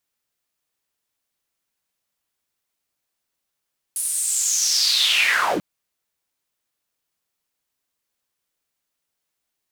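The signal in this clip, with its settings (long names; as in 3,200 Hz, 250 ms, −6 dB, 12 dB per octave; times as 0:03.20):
filter sweep on noise white, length 1.64 s bandpass, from 10,000 Hz, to 150 Hz, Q 6.1, linear, gain ramp +15 dB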